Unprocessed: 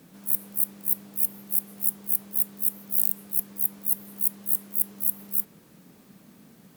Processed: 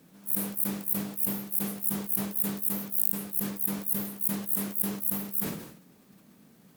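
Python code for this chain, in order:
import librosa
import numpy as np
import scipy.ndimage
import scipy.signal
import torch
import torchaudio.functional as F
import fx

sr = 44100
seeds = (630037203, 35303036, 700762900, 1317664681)

y = fx.sustainer(x, sr, db_per_s=71.0)
y = F.gain(torch.from_numpy(y), -5.0).numpy()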